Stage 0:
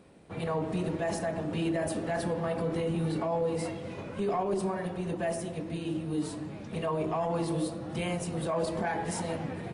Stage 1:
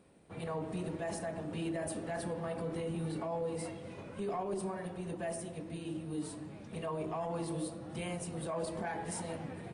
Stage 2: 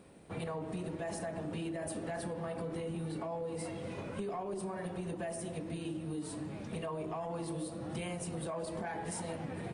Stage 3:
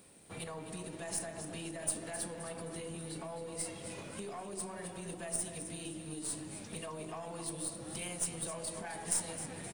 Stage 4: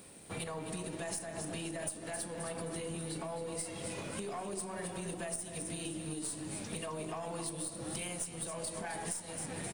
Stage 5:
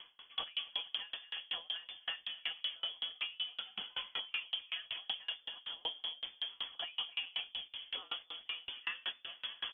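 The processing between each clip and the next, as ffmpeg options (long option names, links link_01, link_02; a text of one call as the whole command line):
ffmpeg -i in.wav -af "equalizer=frequency=8900:width_type=o:width=0.21:gain=8,volume=-7dB" out.wav
ffmpeg -i in.wav -af "acompressor=threshold=-42dB:ratio=6,volume=6dB" out.wav
ffmpeg -i in.wav -af "aecho=1:1:262|524|786|1048|1310:0.299|0.14|0.0659|0.031|0.0146,crystalizer=i=5:c=0,aeval=exprs='0.224*(cos(1*acos(clip(val(0)/0.224,-1,1)))-cos(1*PI/2))+0.0447*(cos(3*acos(clip(val(0)/0.224,-1,1)))-cos(3*PI/2))+0.00794*(cos(4*acos(clip(val(0)/0.224,-1,1)))-cos(4*PI/2))+0.00631*(cos(5*acos(clip(val(0)/0.224,-1,1)))-cos(5*PI/2))+0.00316*(cos(8*acos(clip(val(0)/0.224,-1,1)))-cos(8*PI/2))':channel_layout=same,volume=-1dB" out.wav
ffmpeg -i in.wav -af "acompressor=threshold=-41dB:ratio=12,volume=5.5dB" out.wav
ffmpeg -i in.wav -af "lowpass=frequency=3000:width_type=q:width=0.5098,lowpass=frequency=3000:width_type=q:width=0.6013,lowpass=frequency=3000:width_type=q:width=0.9,lowpass=frequency=3000:width_type=q:width=2.563,afreqshift=-3500,aeval=exprs='val(0)*pow(10,-32*if(lt(mod(5.3*n/s,1),2*abs(5.3)/1000),1-mod(5.3*n/s,1)/(2*abs(5.3)/1000),(mod(5.3*n/s,1)-2*abs(5.3)/1000)/(1-2*abs(5.3)/1000))/20)':channel_layout=same,volume=7.5dB" out.wav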